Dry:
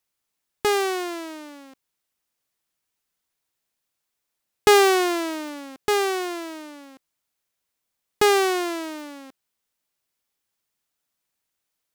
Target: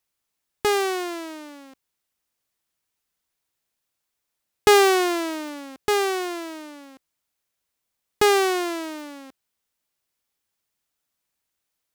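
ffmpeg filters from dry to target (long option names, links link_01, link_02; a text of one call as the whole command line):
ffmpeg -i in.wav -af "equalizer=frequency=60:width=1.5:gain=4" out.wav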